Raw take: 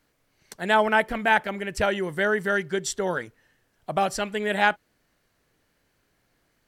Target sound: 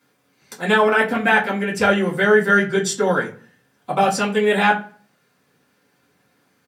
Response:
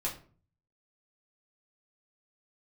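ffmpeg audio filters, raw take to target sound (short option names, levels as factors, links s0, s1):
-filter_complex "[0:a]asplit=2[s0][s1];[s1]alimiter=limit=0.224:level=0:latency=1,volume=1.12[s2];[s0][s2]amix=inputs=2:normalize=0,highpass=f=120:w=0.5412,highpass=f=120:w=1.3066,asplit=2[s3][s4];[s4]adelay=84,lowpass=f=3500:p=1,volume=0.0668,asplit=2[s5][s6];[s6]adelay=84,lowpass=f=3500:p=1,volume=0.43,asplit=2[s7][s8];[s8]adelay=84,lowpass=f=3500:p=1,volume=0.43[s9];[s3][s5][s7][s9]amix=inputs=4:normalize=0[s10];[1:a]atrim=start_sample=2205,asetrate=61740,aresample=44100[s11];[s10][s11]afir=irnorm=-1:irlink=0"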